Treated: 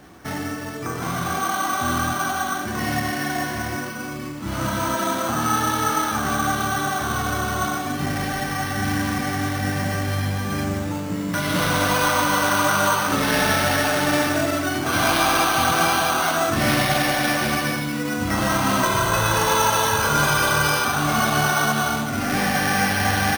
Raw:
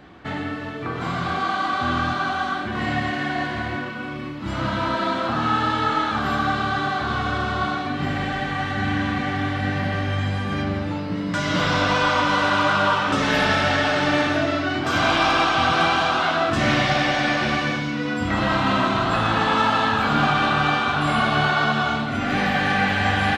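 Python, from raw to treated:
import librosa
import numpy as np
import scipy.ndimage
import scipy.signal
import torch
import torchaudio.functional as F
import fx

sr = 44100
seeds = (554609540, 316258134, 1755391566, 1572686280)

y = np.repeat(x[::6], 6)[:len(x)]
y = fx.comb(y, sr, ms=2.0, depth=0.71, at=(18.83, 20.85))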